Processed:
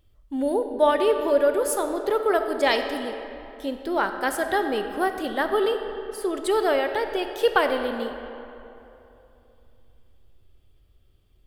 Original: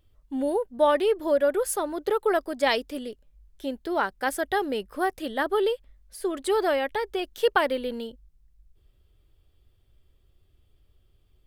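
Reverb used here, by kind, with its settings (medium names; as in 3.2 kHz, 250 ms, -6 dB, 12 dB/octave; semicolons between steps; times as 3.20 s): algorithmic reverb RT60 3 s, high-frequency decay 0.6×, pre-delay 0 ms, DRR 6.5 dB; trim +1.5 dB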